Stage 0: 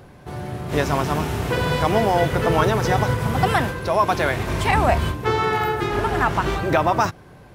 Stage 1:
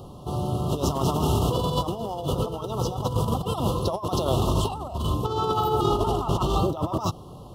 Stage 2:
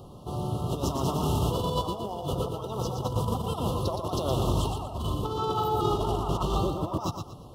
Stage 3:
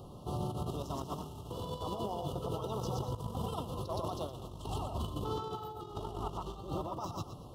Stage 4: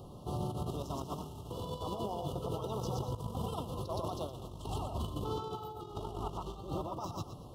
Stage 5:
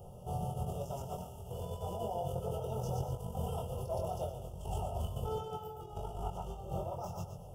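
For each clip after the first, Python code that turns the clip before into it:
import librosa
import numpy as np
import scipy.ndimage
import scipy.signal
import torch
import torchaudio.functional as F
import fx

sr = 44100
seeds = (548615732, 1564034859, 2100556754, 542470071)

y1 = scipy.signal.sosfilt(scipy.signal.cheby1(5, 1.0, [1300.0, 2800.0], 'bandstop', fs=sr, output='sos'), x)
y1 = fx.over_compress(y1, sr, threshold_db=-24.0, ratio=-0.5)
y2 = fx.echo_feedback(y1, sr, ms=118, feedback_pct=30, wet_db=-6.5)
y2 = y2 * 10.0 ** (-4.5 / 20.0)
y3 = fx.over_compress(y2, sr, threshold_db=-31.0, ratio=-0.5)
y3 = y3 * 10.0 ** (-6.5 / 20.0)
y4 = fx.peak_eq(y3, sr, hz=1800.0, db=-14.5, octaves=0.36)
y5 = fx.fixed_phaser(y4, sr, hz=1100.0, stages=6)
y5 = fx.doubler(y5, sr, ms=23.0, db=-3.0)
y5 = y5 + 10.0 ** (-14.0 / 20.0) * np.pad(y5, (int(130 * sr / 1000.0), 0))[:len(y5)]
y5 = y5 * 10.0 ** (1.0 / 20.0)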